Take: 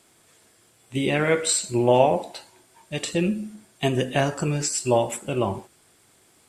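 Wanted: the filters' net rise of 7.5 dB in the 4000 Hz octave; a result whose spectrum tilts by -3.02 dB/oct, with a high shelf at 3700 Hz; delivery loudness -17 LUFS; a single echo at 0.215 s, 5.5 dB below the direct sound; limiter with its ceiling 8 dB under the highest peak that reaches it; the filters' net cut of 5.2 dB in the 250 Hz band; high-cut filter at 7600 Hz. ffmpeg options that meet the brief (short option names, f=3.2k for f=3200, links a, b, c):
-af "lowpass=7.6k,equalizer=f=250:t=o:g=-8,highshelf=f=3.7k:g=7.5,equalizer=f=4k:t=o:g=5,alimiter=limit=-13dB:level=0:latency=1,aecho=1:1:215:0.531,volume=8dB"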